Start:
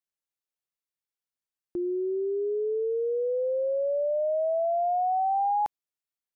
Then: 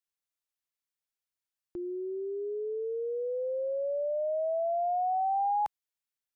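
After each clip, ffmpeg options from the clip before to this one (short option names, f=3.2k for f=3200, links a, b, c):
-af "equalizer=f=280:t=o:w=2.5:g=-7.5"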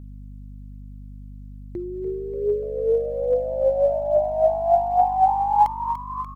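-filter_complex "[0:a]aphaser=in_gain=1:out_gain=1:delay=2.3:decay=0.63:speed=1.2:type=triangular,asplit=8[a][b][c][d][e][f][g][h];[b]adelay=292,afreqshift=95,volume=-10dB[i];[c]adelay=584,afreqshift=190,volume=-14.4dB[j];[d]adelay=876,afreqshift=285,volume=-18.9dB[k];[e]adelay=1168,afreqshift=380,volume=-23.3dB[l];[f]adelay=1460,afreqshift=475,volume=-27.7dB[m];[g]adelay=1752,afreqshift=570,volume=-32.2dB[n];[h]adelay=2044,afreqshift=665,volume=-36.6dB[o];[a][i][j][k][l][m][n][o]amix=inputs=8:normalize=0,aeval=exprs='val(0)+0.00562*(sin(2*PI*50*n/s)+sin(2*PI*2*50*n/s)/2+sin(2*PI*3*50*n/s)/3+sin(2*PI*4*50*n/s)/4+sin(2*PI*5*50*n/s)/5)':c=same,volume=7.5dB"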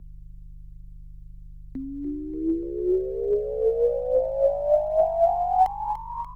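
-af "afreqshift=-87,volume=-2.5dB"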